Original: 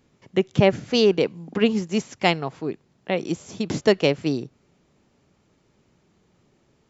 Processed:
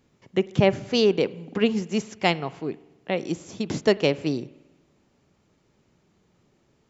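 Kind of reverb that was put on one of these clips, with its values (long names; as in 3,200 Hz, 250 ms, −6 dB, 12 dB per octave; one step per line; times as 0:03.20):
spring reverb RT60 1.1 s, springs 46 ms, chirp 55 ms, DRR 19 dB
level −2 dB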